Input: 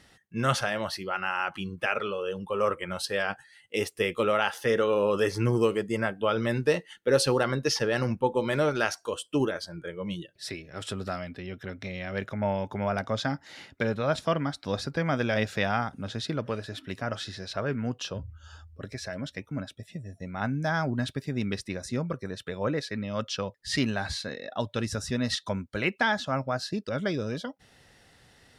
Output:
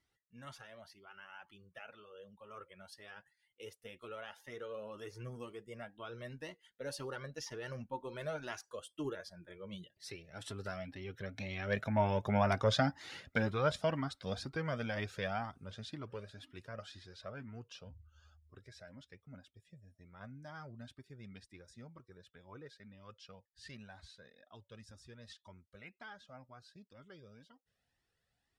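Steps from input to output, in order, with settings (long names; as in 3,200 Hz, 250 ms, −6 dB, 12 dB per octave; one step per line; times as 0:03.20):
source passing by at 0:12.49, 13 m/s, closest 10 metres
flanger whose copies keep moving one way rising 2 Hz
level +4 dB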